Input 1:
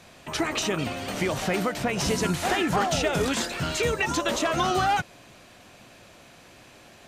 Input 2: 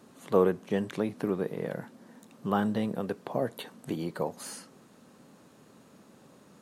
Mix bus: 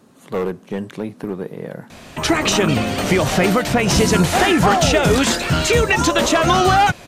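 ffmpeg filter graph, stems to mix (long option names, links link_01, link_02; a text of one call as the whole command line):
ffmpeg -i stem1.wav -i stem2.wav -filter_complex "[0:a]adelay=1900,volume=3dB[link_01];[1:a]volume=20.5dB,asoftclip=hard,volume=-20.5dB,volume=-3.5dB[link_02];[link_01][link_02]amix=inputs=2:normalize=0,lowshelf=frequency=140:gain=5,acontrast=77" out.wav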